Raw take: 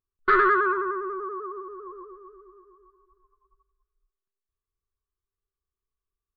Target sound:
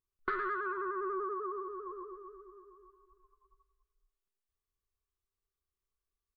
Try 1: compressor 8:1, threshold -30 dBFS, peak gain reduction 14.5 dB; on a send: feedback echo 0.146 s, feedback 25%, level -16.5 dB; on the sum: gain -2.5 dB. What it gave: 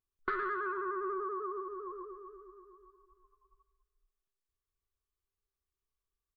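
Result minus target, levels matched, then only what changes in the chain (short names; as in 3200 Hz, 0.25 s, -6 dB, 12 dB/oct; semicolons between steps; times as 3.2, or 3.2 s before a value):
echo 43 ms late
change: feedback echo 0.103 s, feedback 25%, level -16.5 dB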